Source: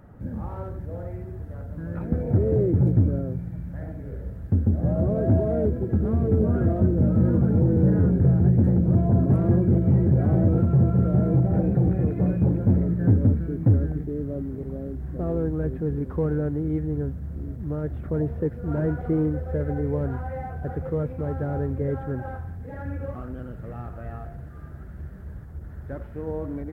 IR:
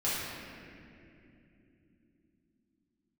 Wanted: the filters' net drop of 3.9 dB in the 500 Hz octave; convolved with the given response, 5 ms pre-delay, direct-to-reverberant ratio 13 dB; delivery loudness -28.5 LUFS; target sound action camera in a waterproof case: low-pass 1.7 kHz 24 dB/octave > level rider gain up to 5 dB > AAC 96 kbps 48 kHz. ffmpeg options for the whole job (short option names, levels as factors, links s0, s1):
-filter_complex "[0:a]equalizer=f=500:t=o:g=-5,asplit=2[s0][s1];[1:a]atrim=start_sample=2205,adelay=5[s2];[s1][s2]afir=irnorm=-1:irlink=0,volume=0.0794[s3];[s0][s3]amix=inputs=2:normalize=0,lowpass=f=1700:w=0.5412,lowpass=f=1700:w=1.3066,dynaudnorm=m=1.78,volume=0.398" -ar 48000 -c:a aac -b:a 96k